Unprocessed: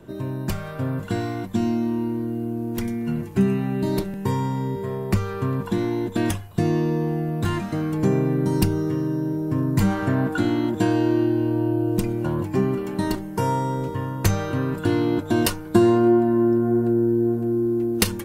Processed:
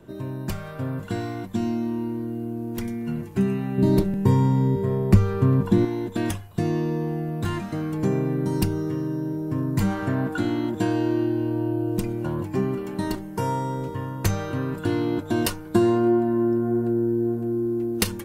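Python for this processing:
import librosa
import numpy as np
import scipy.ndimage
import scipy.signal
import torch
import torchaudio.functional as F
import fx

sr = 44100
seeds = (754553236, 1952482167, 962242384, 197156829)

y = fx.low_shelf(x, sr, hz=500.0, db=10.0, at=(3.78, 5.85))
y = y * 10.0 ** (-3.0 / 20.0)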